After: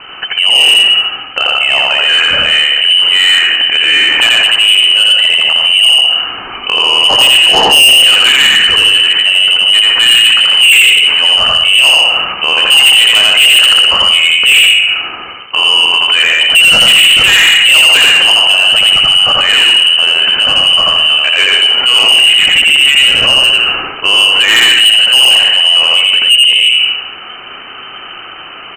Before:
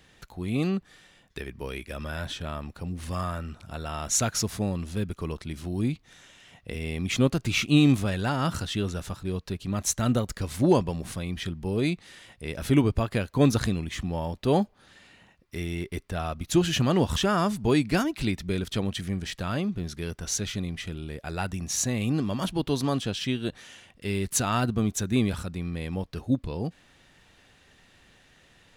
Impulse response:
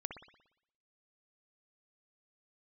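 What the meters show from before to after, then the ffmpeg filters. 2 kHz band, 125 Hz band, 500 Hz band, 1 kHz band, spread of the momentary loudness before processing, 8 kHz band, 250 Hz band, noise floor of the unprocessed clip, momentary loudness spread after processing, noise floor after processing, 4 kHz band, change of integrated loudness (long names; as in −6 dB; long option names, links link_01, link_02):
+30.0 dB, can't be measured, +7.0 dB, +16.0 dB, 13 LU, +16.0 dB, −6.0 dB, −60 dBFS, 6 LU, −28 dBFS, +35.5 dB, +23.5 dB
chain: -filter_complex "[0:a]lowpass=frequency=2600:width_type=q:width=0.5098,lowpass=frequency=2600:width_type=q:width=0.6013,lowpass=frequency=2600:width_type=q:width=0.9,lowpass=frequency=2600:width_type=q:width=2.563,afreqshift=-3100,asplit=2[link_01][link_02];[1:a]atrim=start_sample=2205,adelay=85[link_03];[link_02][link_03]afir=irnorm=-1:irlink=0,volume=2.5dB[link_04];[link_01][link_04]amix=inputs=2:normalize=0,asoftclip=type=tanh:threshold=-22.5dB,aecho=1:1:115:0.0668,alimiter=level_in=29dB:limit=-1dB:release=50:level=0:latency=1,volume=-1dB"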